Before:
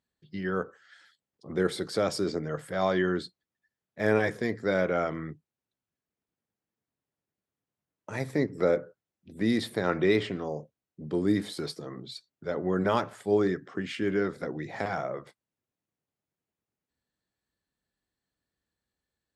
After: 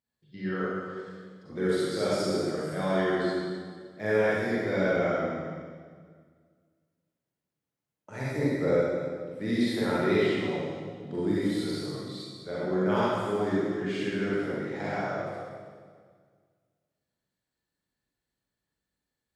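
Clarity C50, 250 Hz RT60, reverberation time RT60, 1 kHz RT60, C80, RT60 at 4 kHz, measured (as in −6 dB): −5.0 dB, 2.1 s, 1.8 s, 1.7 s, −1.5 dB, 1.7 s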